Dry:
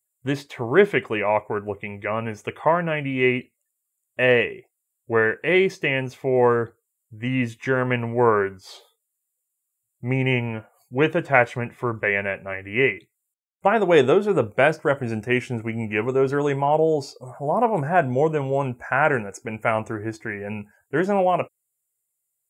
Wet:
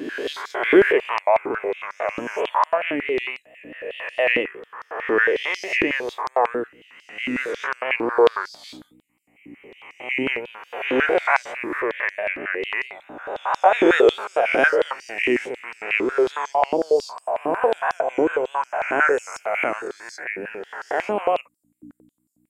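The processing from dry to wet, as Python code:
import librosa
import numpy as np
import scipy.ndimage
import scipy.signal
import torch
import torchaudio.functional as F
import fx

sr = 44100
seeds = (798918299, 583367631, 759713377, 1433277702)

y = fx.spec_swells(x, sr, rise_s=1.38)
y = fx.add_hum(y, sr, base_hz=60, snr_db=13)
y = fx.vibrato(y, sr, rate_hz=4.6, depth_cents=68.0)
y = fx.filter_held_highpass(y, sr, hz=11.0, low_hz=300.0, high_hz=5100.0)
y = y * 10.0 ** (-6.0 / 20.0)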